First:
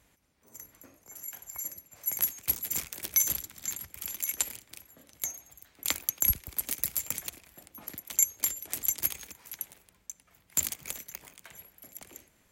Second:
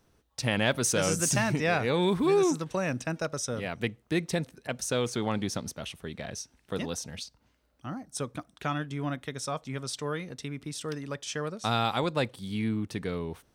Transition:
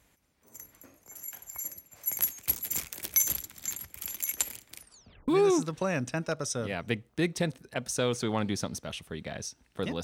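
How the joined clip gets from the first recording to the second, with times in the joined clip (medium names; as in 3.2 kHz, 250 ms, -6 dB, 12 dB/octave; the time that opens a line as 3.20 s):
first
4.74 s: tape stop 0.54 s
5.28 s: go over to second from 2.21 s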